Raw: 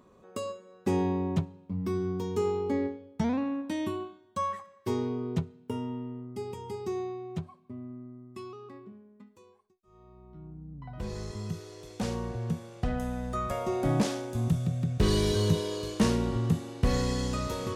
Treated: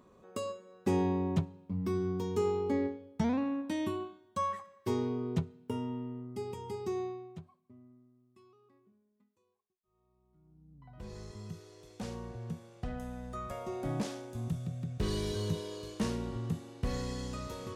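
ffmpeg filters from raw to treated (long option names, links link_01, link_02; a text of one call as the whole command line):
ffmpeg -i in.wav -af "volume=9dB,afade=type=out:start_time=7.05:duration=0.29:silence=0.334965,afade=type=out:start_time=7.34:duration=0.77:silence=0.398107,afade=type=in:start_time=10.44:duration=0.71:silence=0.281838" out.wav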